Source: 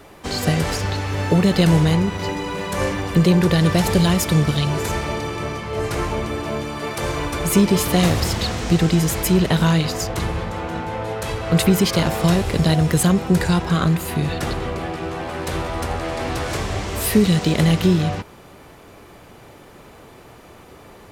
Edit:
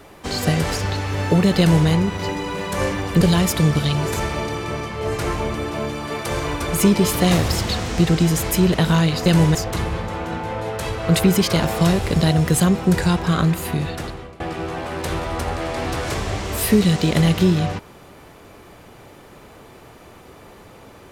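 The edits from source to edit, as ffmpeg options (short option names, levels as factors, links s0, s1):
-filter_complex "[0:a]asplit=5[s0][s1][s2][s3][s4];[s0]atrim=end=3.212[s5];[s1]atrim=start=3.928:end=9.982[s6];[s2]atrim=start=1.588:end=1.882[s7];[s3]atrim=start=9.978:end=14.83,asetpts=PTS-STARTPTS,afade=t=out:st=4.122:d=0.73:silence=0.1[s8];[s4]atrim=start=14.83,asetpts=PTS-STARTPTS,afade=t=in:d=0.004:c=hsin:silence=0.1[s9];[s5][s6]acrossfade=d=0.004:c1=hsin:c2=hsin[s10];[s10][s7]acrossfade=d=0.004:c1=hsin:c2=hsin[s11];[s8][s9]concat=n=2:v=0:a=1[s12];[s11][s12]acrossfade=d=0.004:c1=hsin:c2=hsin"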